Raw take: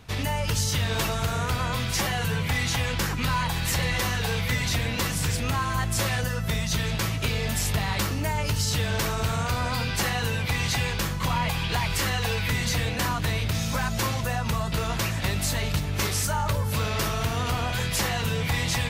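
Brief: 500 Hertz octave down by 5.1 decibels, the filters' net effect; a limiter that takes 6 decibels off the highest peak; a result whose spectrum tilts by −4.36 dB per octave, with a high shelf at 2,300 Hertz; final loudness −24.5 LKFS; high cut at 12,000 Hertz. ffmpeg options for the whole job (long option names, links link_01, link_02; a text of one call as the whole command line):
ffmpeg -i in.wav -af "lowpass=12000,equalizer=frequency=500:width_type=o:gain=-6,highshelf=frequency=2300:gain=-4.5,volume=6.5dB,alimiter=limit=-16.5dB:level=0:latency=1" out.wav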